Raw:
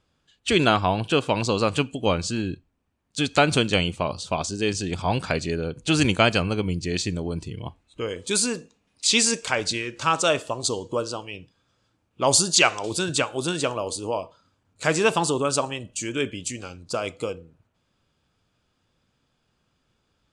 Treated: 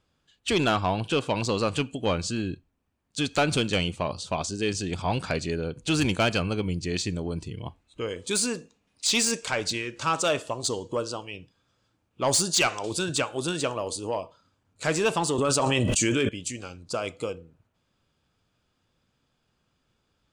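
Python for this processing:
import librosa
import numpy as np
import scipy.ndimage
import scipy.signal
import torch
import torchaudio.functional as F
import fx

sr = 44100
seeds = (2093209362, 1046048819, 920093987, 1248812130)

y = 10.0 ** (-13.0 / 20.0) * np.tanh(x / 10.0 ** (-13.0 / 20.0))
y = fx.env_flatten(y, sr, amount_pct=100, at=(15.38, 16.29))
y = F.gain(torch.from_numpy(y), -2.0).numpy()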